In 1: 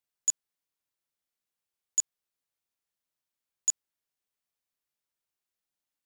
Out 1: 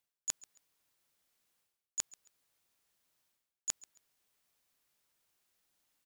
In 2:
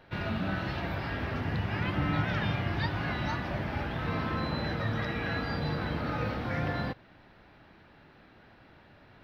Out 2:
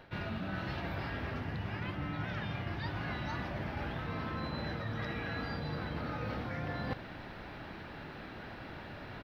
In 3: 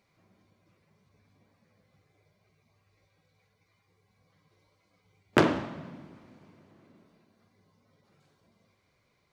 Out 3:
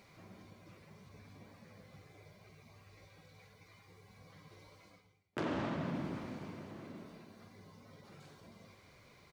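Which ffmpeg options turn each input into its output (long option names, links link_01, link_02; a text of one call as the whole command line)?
ffmpeg -i in.wav -af "areverse,acompressor=threshold=-45dB:ratio=16,areverse,aecho=1:1:136|272:0.0891|0.0232,volume=10.5dB" out.wav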